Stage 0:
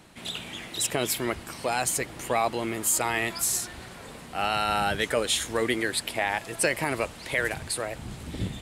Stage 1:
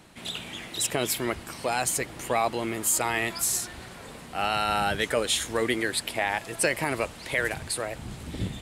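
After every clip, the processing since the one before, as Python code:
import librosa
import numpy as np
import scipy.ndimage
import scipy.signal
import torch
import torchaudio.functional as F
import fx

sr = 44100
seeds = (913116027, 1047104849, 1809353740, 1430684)

y = x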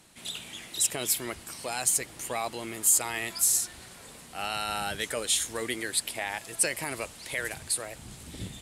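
y = fx.peak_eq(x, sr, hz=9700.0, db=11.5, octaves=2.3)
y = y * 10.0 ** (-8.0 / 20.0)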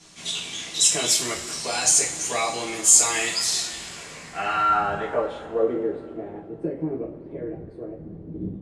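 y = fx.filter_sweep_lowpass(x, sr, from_hz=6400.0, to_hz=350.0, start_s=3.09, end_s=6.17, q=2.3)
y = fx.rev_double_slope(y, sr, seeds[0], early_s=0.33, late_s=2.9, knee_db=-19, drr_db=-7.0)
y = y * 10.0 ** (-1.0 / 20.0)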